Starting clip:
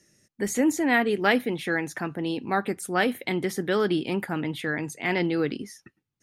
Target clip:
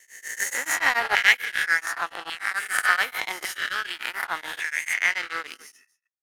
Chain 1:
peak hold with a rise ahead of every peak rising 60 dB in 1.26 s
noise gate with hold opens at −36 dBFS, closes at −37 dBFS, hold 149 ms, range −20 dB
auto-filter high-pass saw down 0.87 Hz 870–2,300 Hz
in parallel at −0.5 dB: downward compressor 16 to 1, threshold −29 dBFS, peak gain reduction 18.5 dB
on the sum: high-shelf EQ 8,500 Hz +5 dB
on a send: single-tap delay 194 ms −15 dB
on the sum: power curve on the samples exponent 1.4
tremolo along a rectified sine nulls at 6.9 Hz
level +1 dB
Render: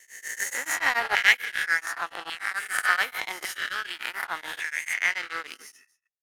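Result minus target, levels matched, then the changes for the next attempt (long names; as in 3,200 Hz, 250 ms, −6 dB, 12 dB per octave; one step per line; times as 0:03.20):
downward compressor: peak gain reduction +8.5 dB
change: downward compressor 16 to 1, threshold −20 dBFS, peak gain reduction 10.5 dB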